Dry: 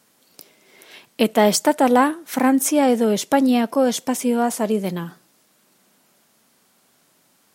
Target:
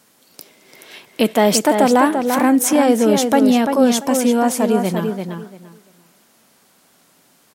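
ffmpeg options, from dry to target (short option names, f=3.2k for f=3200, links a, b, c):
-filter_complex "[0:a]asplit=2[a][b];[b]alimiter=limit=-14dB:level=0:latency=1,volume=-1dB[c];[a][c]amix=inputs=2:normalize=0,asplit=2[d][e];[e]adelay=342,lowpass=f=3.7k:p=1,volume=-5.5dB,asplit=2[f][g];[g]adelay=342,lowpass=f=3.7k:p=1,volume=0.21,asplit=2[h][i];[i]adelay=342,lowpass=f=3.7k:p=1,volume=0.21[j];[d][f][h][j]amix=inputs=4:normalize=0,volume=-1dB"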